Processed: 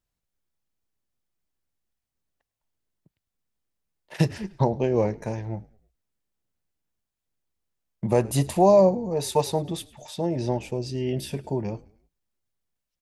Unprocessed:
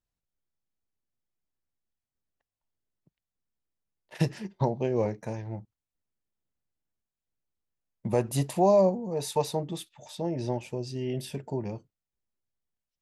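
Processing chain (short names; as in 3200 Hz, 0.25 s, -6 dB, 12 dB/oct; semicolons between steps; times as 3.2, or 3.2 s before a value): frequency-shifting echo 0.104 s, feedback 46%, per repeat -56 Hz, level -22.5 dB; tempo 1×; gain +4.5 dB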